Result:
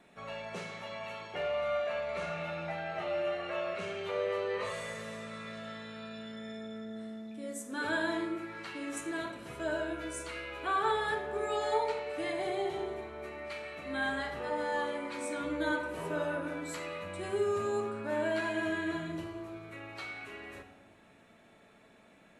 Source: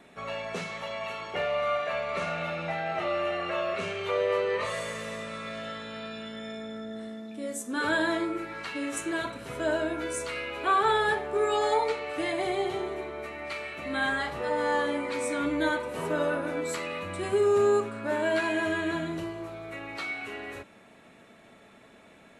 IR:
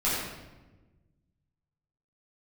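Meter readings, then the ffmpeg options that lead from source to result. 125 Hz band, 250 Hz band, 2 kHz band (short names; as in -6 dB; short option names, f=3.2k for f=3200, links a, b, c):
-4.5 dB, -5.0 dB, -6.0 dB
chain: -filter_complex "[0:a]asplit=2[a][b];[1:a]atrim=start_sample=2205,asetrate=52920,aresample=44100[c];[b][c]afir=irnorm=-1:irlink=0,volume=-15dB[d];[a][d]amix=inputs=2:normalize=0,volume=-8dB"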